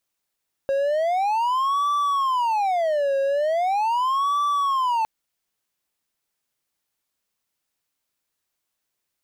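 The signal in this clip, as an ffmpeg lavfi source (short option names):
-f lavfi -i "aevalsrc='0.141*(1-4*abs(mod((853*t-307/(2*PI*0.4)*sin(2*PI*0.4*t))+0.25,1)-0.5))':d=4.36:s=44100"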